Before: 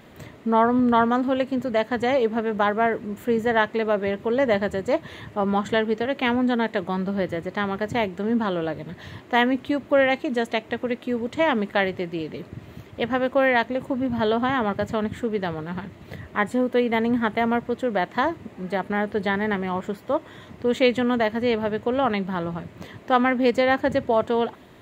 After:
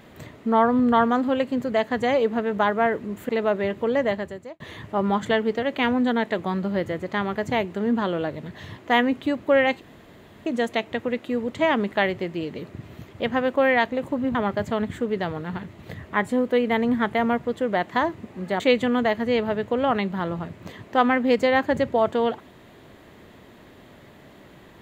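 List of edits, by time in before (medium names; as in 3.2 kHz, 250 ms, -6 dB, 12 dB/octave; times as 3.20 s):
3.29–3.72 s: delete
4.31–5.03 s: fade out
10.24 s: insert room tone 0.65 s
14.13–14.57 s: delete
18.82–20.75 s: delete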